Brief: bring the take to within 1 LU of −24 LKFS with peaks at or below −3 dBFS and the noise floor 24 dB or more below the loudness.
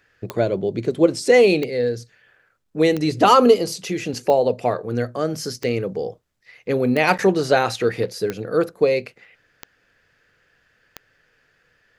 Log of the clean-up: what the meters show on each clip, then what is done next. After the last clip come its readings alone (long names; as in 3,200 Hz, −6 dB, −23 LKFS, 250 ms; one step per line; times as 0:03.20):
number of clicks 9; integrated loudness −19.5 LKFS; sample peak −1.0 dBFS; target loudness −24.0 LKFS
→ click removal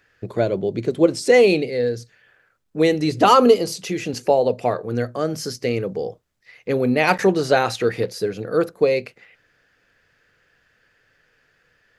number of clicks 0; integrated loudness −19.5 LKFS; sample peak −1.0 dBFS; target loudness −24.0 LKFS
→ level −4.5 dB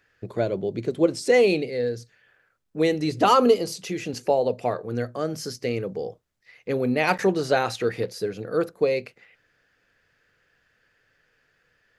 integrated loudness −24.0 LKFS; sample peak −5.5 dBFS; background noise floor −68 dBFS